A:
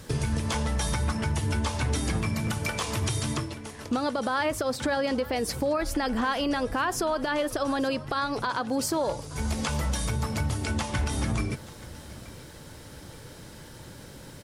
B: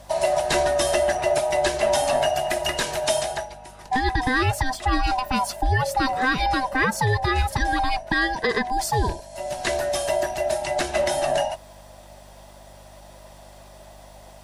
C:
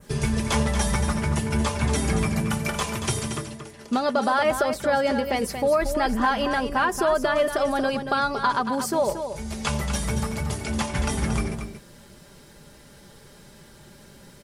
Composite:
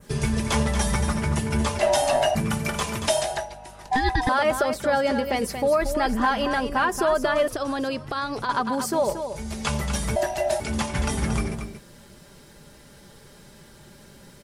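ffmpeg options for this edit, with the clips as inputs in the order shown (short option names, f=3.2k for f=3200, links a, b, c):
-filter_complex "[1:a]asplit=3[a][b][c];[2:a]asplit=5[d][e][f][g][h];[d]atrim=end=1.792[i];[a]atrim=start=1.788:end=2.352[j];[e]atrim=start=2.348:end=3.082[k];[b]atrim=start=3.078:end=4.292[l];[f]atrim=start=4.288:end=7.482[m];[0:a]atrim=start=7.478:end=8.492[n];[g]atrim=start=8.488:end=10.162[o];[c]atrim=start=10.158:end=10.602[p];[h]atrim=start=10.598[q];[i][j]acrossfade=d=0.004:c1=hsin:c2=hsin[r];[r][k]acrossfade=d=0.004:c1=hsin:c2=hsin[s];[s][l]acrossfade=d=0.004:c1=hsin:c2=hsin[t];[t][m]acrossfade=d=0.004:c1=hsin:c2=hsin[u];[u][n]acrossfade=d=0.004:c1=hsin:c2=hsin[v];[v][o]acrossfade=d=0.004:c1=hsin:c2=hsin[w];[w][p]acrossfade=d=0.004:c1=hsin:c2=hsin[x];[x][q]acrossfade=d=0.004:c1=hsin:c2=hsin"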